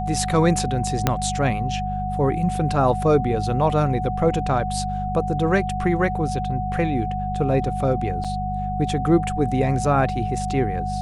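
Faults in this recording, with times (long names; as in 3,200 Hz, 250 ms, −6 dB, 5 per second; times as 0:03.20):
mains hum 50 Hz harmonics 4 −28 dBFS
whistle 740 Hz −26 dBFS
0:01.07: click −3 dBFS
0:08.24–0:08.25: drop-out 6.2 ms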